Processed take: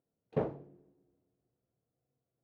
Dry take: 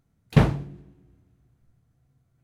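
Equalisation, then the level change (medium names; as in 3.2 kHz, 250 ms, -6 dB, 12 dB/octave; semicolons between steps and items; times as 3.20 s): band-pass filter 490 Hz, Q 2.1; -4.5 dB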